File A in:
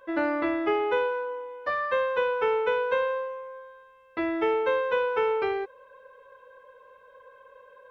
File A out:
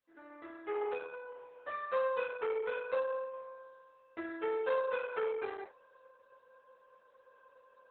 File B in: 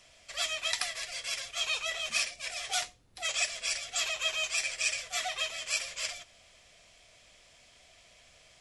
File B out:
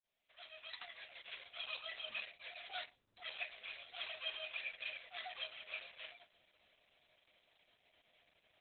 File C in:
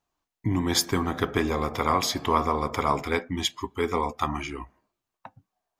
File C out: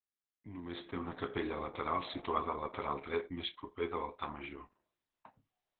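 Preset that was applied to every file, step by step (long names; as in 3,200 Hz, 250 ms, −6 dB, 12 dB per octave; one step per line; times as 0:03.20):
fade in at the beginning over 1.26 s
low-shelf EQ 94 Hz −11.5 dB
resonators tuned to a chord C#2 major, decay 0.2 s
level −1 dB
Opus 8 kbit/s 48,000 Hz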